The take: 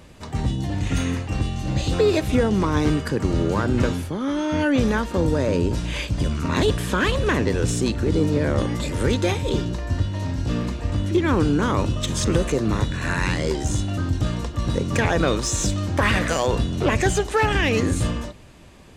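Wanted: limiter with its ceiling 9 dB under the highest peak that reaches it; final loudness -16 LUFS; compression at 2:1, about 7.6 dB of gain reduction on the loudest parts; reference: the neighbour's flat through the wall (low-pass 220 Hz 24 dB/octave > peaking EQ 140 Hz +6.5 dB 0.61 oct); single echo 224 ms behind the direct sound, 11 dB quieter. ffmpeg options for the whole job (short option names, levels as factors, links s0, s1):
-af "acompressor=threshold=0.0355:ratio=2,alimiter=limit=0.0794:level=0:latency=1,lowpass=f=220:w=0.5412,lowpass=f=220:w=1.3066,equalizer=f=140:t=o:w=0.61:g=6.5,aecho=1:1:224:0.282,volume=6.31"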